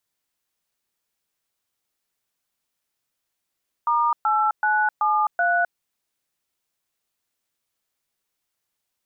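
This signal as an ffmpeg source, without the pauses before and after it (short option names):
-f lavfi -i "aevalsrc='0.1*clip(min(mod(t,0.38),0.259-mod(t,0.38))/0.002,0,1)*(eq(floor(t/0.38),0)*(sin(2*PI*941*mod(t,0.38))+sin(2*PI*1209*mod(t,0.38)))+eq(floor(t/0.38),1)*(sin(2*PI*852*mod(t,0.38))+sin(2*PI*1336*mod(t,0.38)))+eq(floor(t/0.38),2)*(sin(2*PI*852*mod(t,0.38))+sin(2*PI*1477*mod(t,0.38)))+eq(floor(t/0.38),3)*(sin(2*PI*852*mod(t,0.38))+sin(2*PI*1209*mod(t,0.38)))+eq(floor(t/0.38),4)*(sin(2*PI*697*mod(t,0.38))+sin(2*PI*1477*mod(t,0.38))))':d=1.9:s=44100"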